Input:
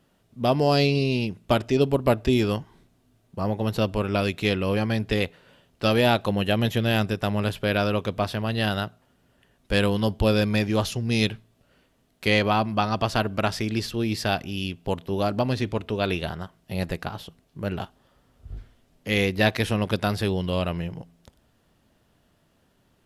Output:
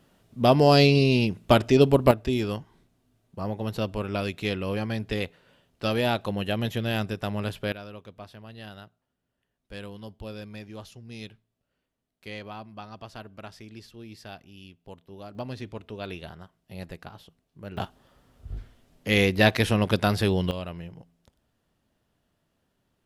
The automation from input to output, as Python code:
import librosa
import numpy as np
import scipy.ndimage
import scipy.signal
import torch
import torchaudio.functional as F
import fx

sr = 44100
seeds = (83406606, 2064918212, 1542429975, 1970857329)

y = fx.gain(x, sr, db=fx.steps((0.0, 3.0), (2.11, -5.0), (7.72, -18.0), (15.35, -11.0), (17.77, 1.5), (20.51, -9.0)))